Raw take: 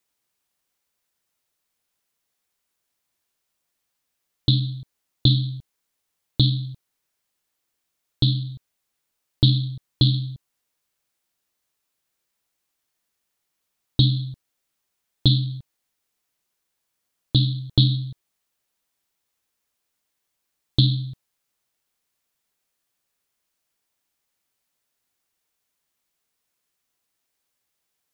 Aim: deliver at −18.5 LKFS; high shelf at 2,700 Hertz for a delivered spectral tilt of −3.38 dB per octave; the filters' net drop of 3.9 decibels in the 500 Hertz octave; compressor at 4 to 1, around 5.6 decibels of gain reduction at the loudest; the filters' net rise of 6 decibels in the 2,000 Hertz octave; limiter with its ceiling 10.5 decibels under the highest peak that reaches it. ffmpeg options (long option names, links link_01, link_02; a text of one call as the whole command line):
ffmpeg -i in.wav -af "equalizer=frequency=500:width_type=o:gain=-7,equalizer=frequency=2000:width_type=o:gain=7,highshelf=frequency=2700:gain=3.5,acompressor=threshold=-18dB:ratio=4,volume=10.5dB,alimiter=limit=-4dB:level=0:latency=1" out.wav